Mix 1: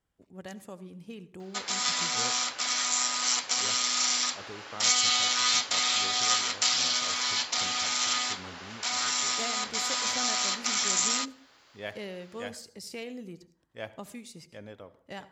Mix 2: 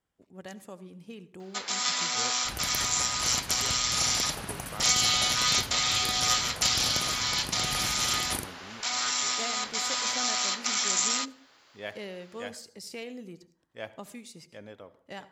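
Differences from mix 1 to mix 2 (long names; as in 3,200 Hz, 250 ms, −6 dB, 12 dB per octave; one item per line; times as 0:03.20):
second sound: unmuted
master: add low-shelf EQ 97 Hz −8 dB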